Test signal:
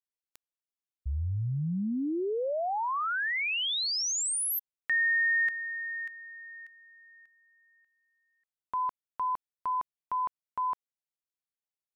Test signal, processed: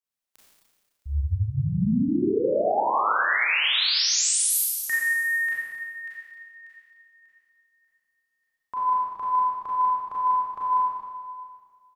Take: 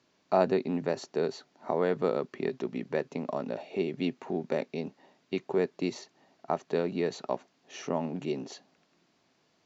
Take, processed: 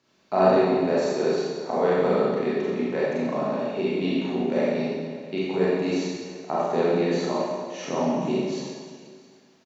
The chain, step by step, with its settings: notches 60/120 Hz; on a send: echo 0.665 s -22 dB; on the sum: Schroeder reverb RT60 1.6 s, combs from 29 ms, DRR -8 dB; gain -1 dB

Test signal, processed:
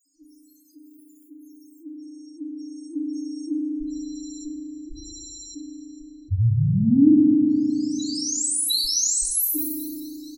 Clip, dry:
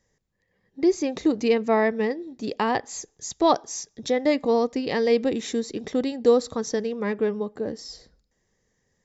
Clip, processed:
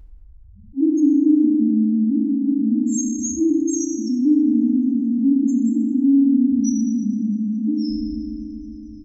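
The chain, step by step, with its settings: median filter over 9 samples; FFT band-reject 330–3900 Hz; high shelf 4100 Hz +11 dB; comb 3.1 ms, depth 73%; de-hum 52.58 Hz, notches 7; dynamic EQ 100 Hz, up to -6 dB, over -48 dBFS, Q 1.7; limiter -19.5 dBFS; phaser 1.1 Hz, delay 1.3 ms, feedback 25%; loudest bins only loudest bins 2; band-limited delay 0.218 s, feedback 74%, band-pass 1500 Hz, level -20 dB; FDN reverb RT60 1.6 s, low-frequency decay 1.3×, high-frequency decay 0.6×, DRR -0.5 dB; fast leveller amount 50%; gain +2.5 dB

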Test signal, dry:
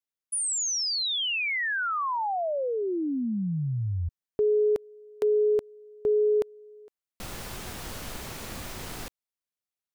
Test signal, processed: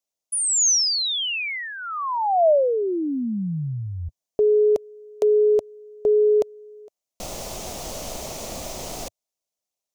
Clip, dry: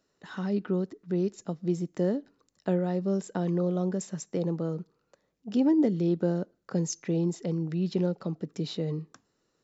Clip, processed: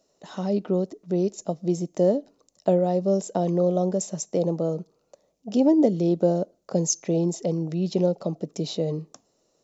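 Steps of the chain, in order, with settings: fifteen-band EQ 100 Hz -5 dB, 630 Hz +11 dB, 1600 Hz -10 dB, 6300 Hz +8 dB; gain +3 dB

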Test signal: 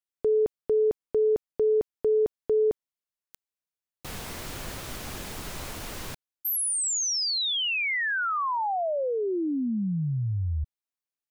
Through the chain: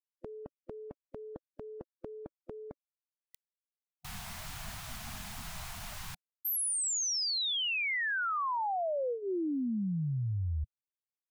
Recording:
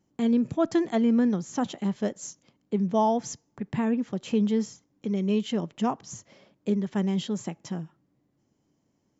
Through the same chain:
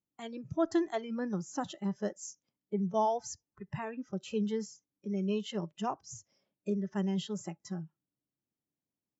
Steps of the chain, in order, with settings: spectral noise reduction 18 dB; gain -5 dB

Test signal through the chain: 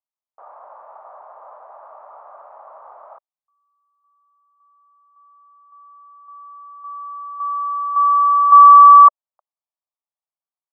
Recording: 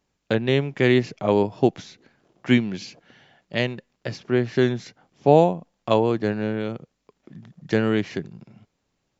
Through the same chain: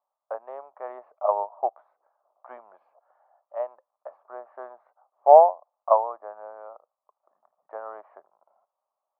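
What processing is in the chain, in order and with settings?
Chebyshev band-pass 600–1200 Hz, order 3; upward expander 1.5:1, over -34 dBFS; gain +8 dB

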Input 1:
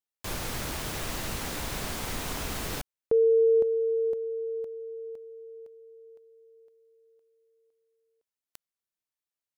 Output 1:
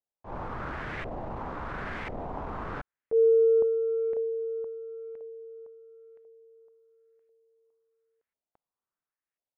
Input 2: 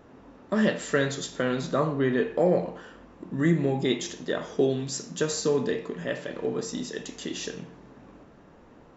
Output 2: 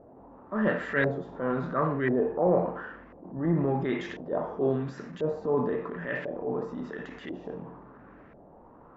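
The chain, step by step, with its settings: transient shaper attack -9 dB, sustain +4 dB; LFO low-pass saw up 0.96 Hz 630–2100 Hz; gain -2 dB

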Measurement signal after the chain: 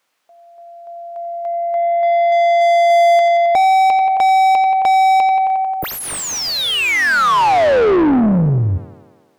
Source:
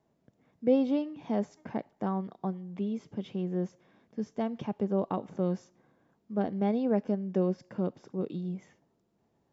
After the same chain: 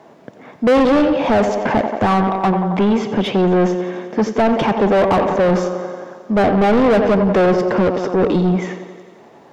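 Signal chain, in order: low shelf 62 Hz -10.5 dB; thinning echo 89 ms, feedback 72%, high-pass 150 Hz, level -14.5 dB; overdrive pedal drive 33 dB, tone 1600 Hz, clips at -14 dBFS; gain +8.5 dB

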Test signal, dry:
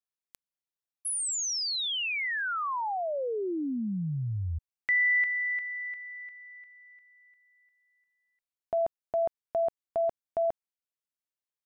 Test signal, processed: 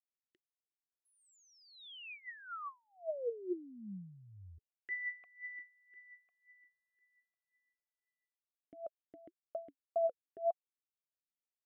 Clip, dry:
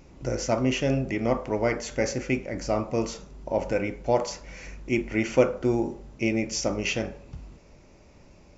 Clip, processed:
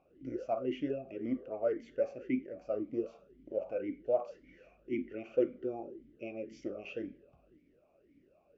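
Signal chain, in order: tilt -2.5 dB/oct; vowel sweep a-i 1.9 Hz; gain -3.5 dB

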